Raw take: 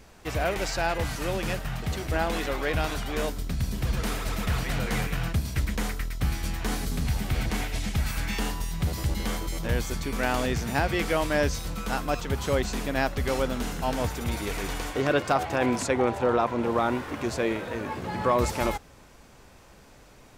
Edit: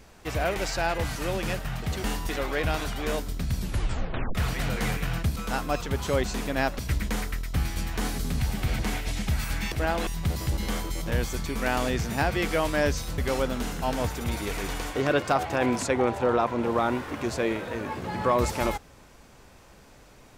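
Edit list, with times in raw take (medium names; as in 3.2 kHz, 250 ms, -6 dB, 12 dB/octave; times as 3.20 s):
2.04–2.39 s: swap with 8.39–8.64 s
3.68 s: tape stop 0.77 s
11.75–13.18 s: move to 5.46 s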